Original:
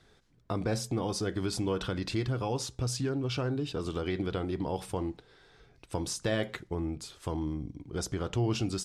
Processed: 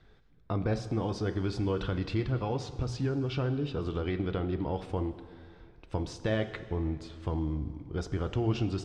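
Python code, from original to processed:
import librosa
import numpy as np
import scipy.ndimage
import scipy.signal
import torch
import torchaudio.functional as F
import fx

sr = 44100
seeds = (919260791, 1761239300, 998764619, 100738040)

y = scipy.signal.sosfilt(scipy.signal.butter(2, 3500.0, 'lowpass', fs=sr, output='sos'), x)
y = fx.low_shelf(y, sr, hz=91.0, db=10.5)
y = fx.hum_notches(y, sr, base_hz=60, count=2)
y = fx.rev_plate(y, sr, seeds[0], rt60_s=2.2, hf_ratio=0.8, predelay_ms=0, drr_db=11.0)
y = y * 10.0 ** (-1.0 / 20.0)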